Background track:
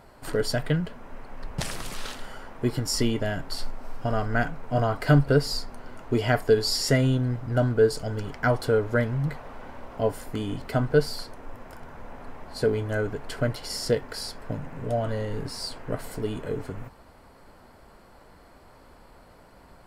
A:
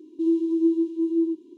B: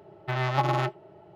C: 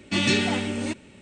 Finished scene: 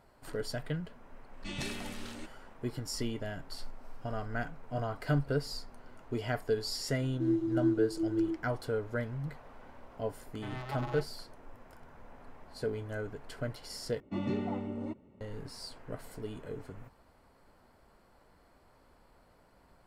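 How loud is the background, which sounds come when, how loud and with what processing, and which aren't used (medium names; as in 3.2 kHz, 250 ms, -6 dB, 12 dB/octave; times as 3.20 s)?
background track -11 dB
1.33 s: add C -18 dB
7.01 s: add A -8 dB
10.14 s: add B -15 dB
14.00 s: replace with C -9 dB + Savitzky-Golay filter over 65 samples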